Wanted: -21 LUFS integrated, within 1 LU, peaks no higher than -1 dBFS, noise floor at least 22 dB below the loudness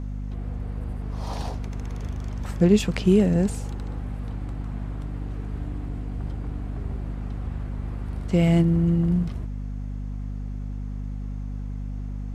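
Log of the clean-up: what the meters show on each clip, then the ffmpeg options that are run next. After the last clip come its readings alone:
hum 50 Hz; harmonics up to 250 Hz; hum level -29 dBFS; loudness -27.0 LUFS; peak -7.5 dBFS; loudness target -21.0 LUFS
-> -af "bandreject=f=50:t=h:w=4,bandreject=f=100:t=h:w=4,bandreject=f=150:t=h:w=4,bandreject=f=200:t=h:w=4,bandreject=f=250:t=h:w=4"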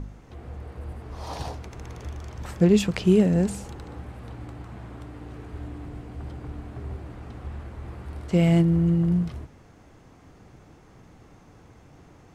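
hum none; loudness -23.5 LUFS; peak -8.0 dBFS; loudness target -21.0 LUFS
-> -af "volume=2.5dB"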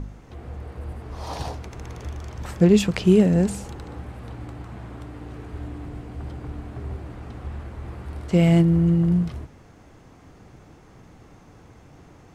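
loudness -21.0 LUFS; peak -5.5 dBFS; noise floor -50 dBFS

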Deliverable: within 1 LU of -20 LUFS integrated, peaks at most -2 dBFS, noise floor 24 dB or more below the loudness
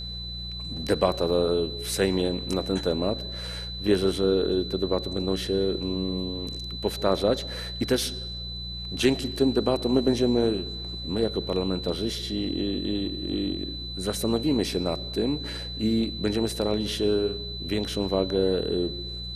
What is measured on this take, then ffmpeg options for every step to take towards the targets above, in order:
hum 60 Hz; harmonics up to 180 Hz; hum level -35 dBFS; steady tone 4000 Hz; tone level -35 dBFS; loudness -26.5 LUFS; peak -7.5 dBFS; loudness target -20.0 LUFS
-> -af "bandreject=f=60:t=h:w=4,bandreject=f=120:t=h:w=4,bandreject=f=180:t=h:w=4"
-af "bandreject=f=4k:w=30"
-af "volume=6.5dB,alimiter=limit=-2dB:level=0:latency=1"

